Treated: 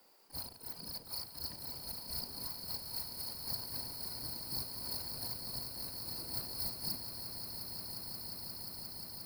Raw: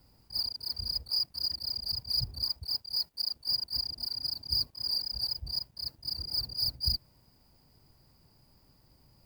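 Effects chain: spectral gate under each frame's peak -15 dB weak; echo with a slow build-up 177 ms, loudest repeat 8, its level -11 dB; trim +3.5 dB

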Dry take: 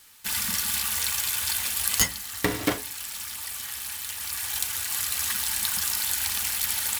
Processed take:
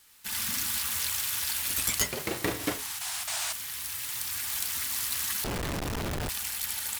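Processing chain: 3.27–3.53 s: painted sound noise 590–10000 Hz -27 dBFS; ever faster or slower copies 94 ms, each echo +2 st, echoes 3; 5.44–6.29 s: Schmitt trigger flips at -19.5 dBFS; trim -6 dB

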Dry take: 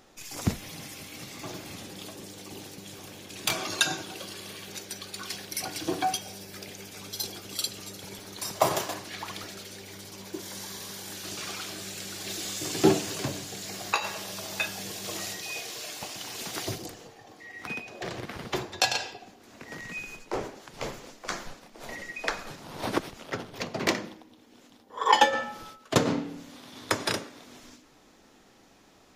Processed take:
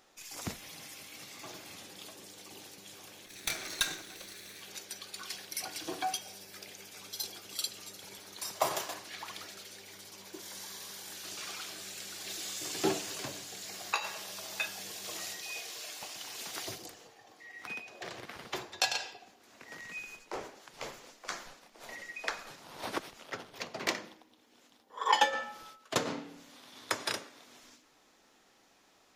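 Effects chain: 3.26–4.61 s: comb filter that takes the minimum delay 0.49 ms; bass shelf 360 Hz -11.5 dB; trim -4.5 dB

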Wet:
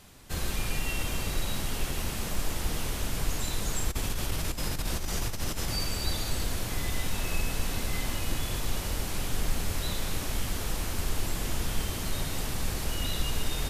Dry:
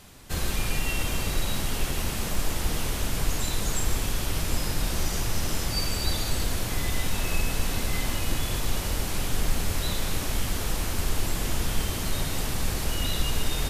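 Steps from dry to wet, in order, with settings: 3.90–5.83 s: compressor with a negative ratio -25 dBFS, ratio -0.5; trim -3.5 dB

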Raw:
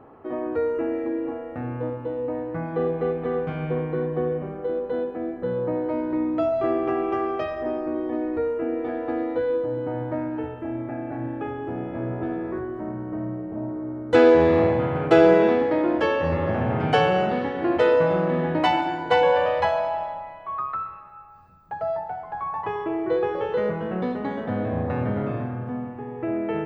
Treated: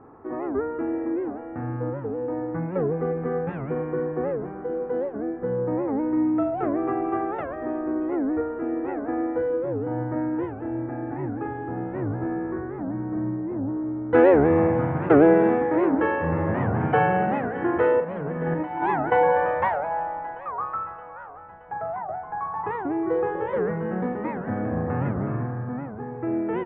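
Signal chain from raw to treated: low-pass 1.9 kHz 24 dB/octave; peaking EQ 600 Hz -8.5 dB 0.27 oct; 18.00–19.12 s: compressor with a negative ratio -27 dBFS, ratio -0.5; doubling 42 ms -7 dB; thinning echo 622 ms, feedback 58%, high-pass 150 Hz, level -17 dB; warped record 78 rpm, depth 250 cents

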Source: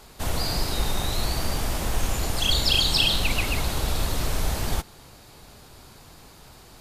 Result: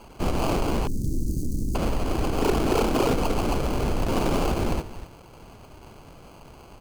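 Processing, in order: 4.12–4.52 s: high-order bell 6.5 kHz +11.5 dB; echo from a far wall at 42 m, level -14 dB; sample-and-hold 24×; peak limiter -19 dBFS, peak gain reduction 9 dB; 0.87–1.75 s: inverse Chebyshev band-stop 870–2200 Hz, stop band 70 dB; dynamic bell 300 Hz, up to +7 dB, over -44 dBFS, Q 0.95; loudspeaker Doppler distortion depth 0.36 ms; trim +1.5 dB

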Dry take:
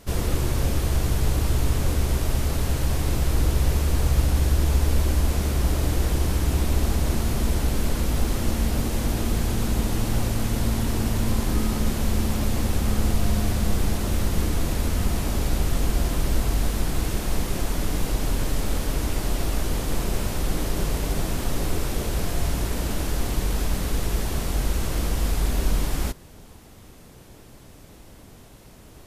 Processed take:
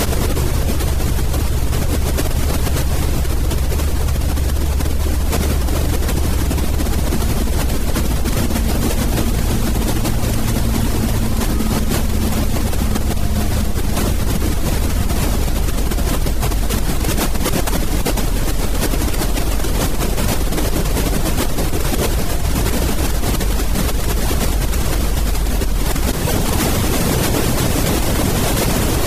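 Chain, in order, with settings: reverb removal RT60 0.57 s; level flattener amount 100%

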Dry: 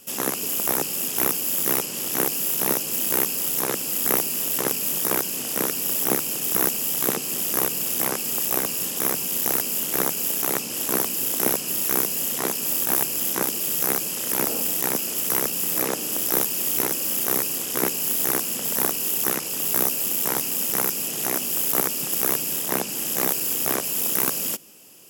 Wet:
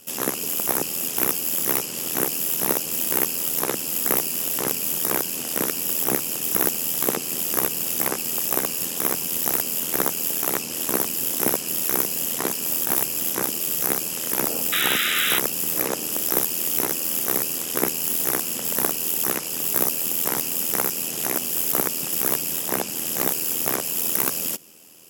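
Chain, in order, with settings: spectral gate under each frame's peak -30 dB strong; AM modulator 82 Hz, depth 40%; painted sound noise, 14.72–15.39 s, 1.2–4 kHz -26 dBFS; trim +2.5 dB

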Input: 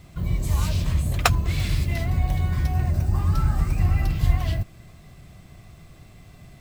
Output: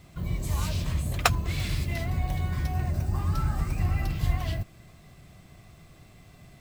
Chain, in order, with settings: bass shelf 120 Hz -5 dB; trim -2.5 dB

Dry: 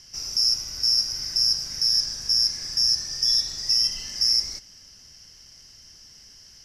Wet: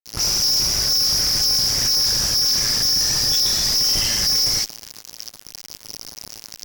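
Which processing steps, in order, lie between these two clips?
AM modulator 110 Hz, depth 65%; phase dispersion highs, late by 62 ms, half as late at 1.5 kHz; fuzz box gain 48 dB, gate -46 dBFS; trim -3.5 dB

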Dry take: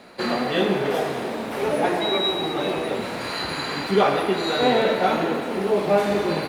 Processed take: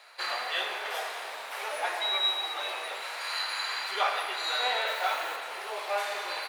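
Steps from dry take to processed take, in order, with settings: 4.87–5.36 s: word length cut 8-bit, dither triangular; Bessel high-pass 1.1 kHz, order 4; trim -2 dB

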